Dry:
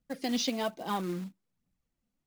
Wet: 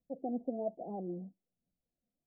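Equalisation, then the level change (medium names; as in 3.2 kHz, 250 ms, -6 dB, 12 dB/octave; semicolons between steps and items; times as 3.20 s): Chebyshev low-pass 740 Hz, order 6; bass shelf 300 Hz -11 dB; +1.0 dB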